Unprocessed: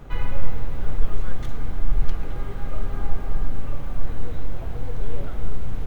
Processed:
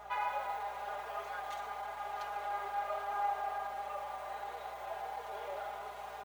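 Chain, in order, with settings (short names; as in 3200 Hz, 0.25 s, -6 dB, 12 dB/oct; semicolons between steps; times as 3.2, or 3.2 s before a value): ladder high-pass 660 Hz, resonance 60%; comb 4.9 ms, depth 70%; tempo 0.94×; hum 60 Hz, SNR 26 dB; harmonic-percussive split percussive -7 dB; gain +8 dB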